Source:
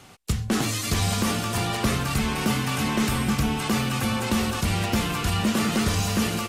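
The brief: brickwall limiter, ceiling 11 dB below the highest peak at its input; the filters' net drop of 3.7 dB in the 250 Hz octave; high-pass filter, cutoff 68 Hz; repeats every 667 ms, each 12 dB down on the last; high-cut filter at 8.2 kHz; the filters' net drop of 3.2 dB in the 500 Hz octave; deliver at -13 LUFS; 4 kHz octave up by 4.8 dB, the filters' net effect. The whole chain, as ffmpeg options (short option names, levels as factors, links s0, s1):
-af "highpass=68,lowpass=8200,equalizer=f=250:t=o:g=-4,equalizer=f=500:t=o:g=-3,equalizer=f=4000:t=o:g=6.5,alimiter=limit=0.0668:level=0:latency=1,aecho=1:1:667|1334|2001:0.251|0.0628|0.0157,volume=7.94"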